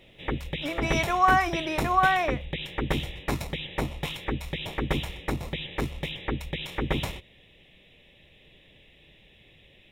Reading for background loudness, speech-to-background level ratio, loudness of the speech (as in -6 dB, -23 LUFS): -32.0 LUFS, 7.5 dB, -24.5 LUFS